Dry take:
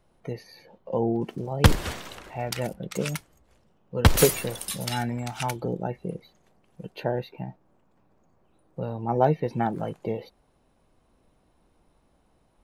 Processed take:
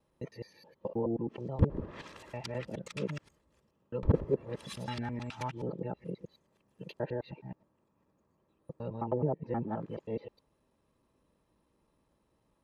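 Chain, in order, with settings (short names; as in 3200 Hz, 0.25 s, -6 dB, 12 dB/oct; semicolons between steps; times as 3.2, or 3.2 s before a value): local time reversal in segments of 0.106 s; treble ducked by the level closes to 580 Hz, closed at -18.5 dBFS; notch comb 740 Hz; gain -6.5 dB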